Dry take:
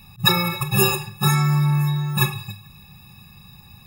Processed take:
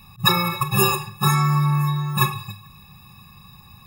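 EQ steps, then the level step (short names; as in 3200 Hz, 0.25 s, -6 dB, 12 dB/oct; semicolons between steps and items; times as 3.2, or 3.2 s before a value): bell 1100 Hz +12 dB 0.21 oct; -1.0 dB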